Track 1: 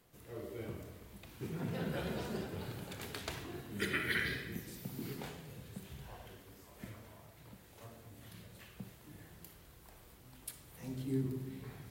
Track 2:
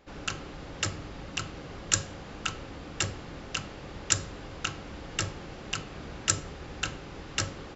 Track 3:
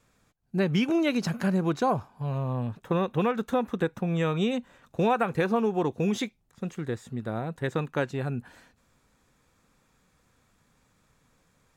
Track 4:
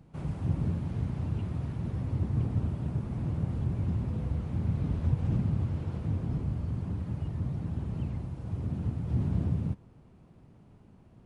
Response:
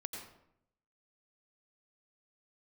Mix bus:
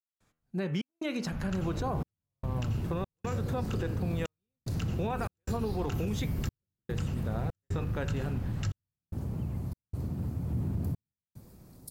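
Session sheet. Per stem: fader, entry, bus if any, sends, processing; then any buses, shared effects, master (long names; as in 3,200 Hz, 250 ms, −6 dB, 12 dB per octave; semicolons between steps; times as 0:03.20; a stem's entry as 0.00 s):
0.0 dB, 1.40 s, no bus, no send, elliptic band-stop filter 560–4,400 Hz
−6.5 dB, 1.25 s, bus A, send −7 dB, low shelf with overshoot 220 Hz +14 dB, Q 1.5
−4.5 dB, 0.00 s, no bus, no send, hum removal 80.38 Hz, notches 40
−1.5 dB, 1.40 s, bus A, send −6 dB, no processing
bus A: 0.0 dB, low-pass filter 1,900 Hz 6 dB per octave; brickwall limiter −30.5 dBFS, peak gain reduction 14.5 dB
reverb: on, RT60 0.75 s, pre-delay 82 ms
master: gate pattern ".xxx.xxxxx." 74 BPM −60 dB; brickwall limiter −23.5 dBFS, peak gain reduction 8 dB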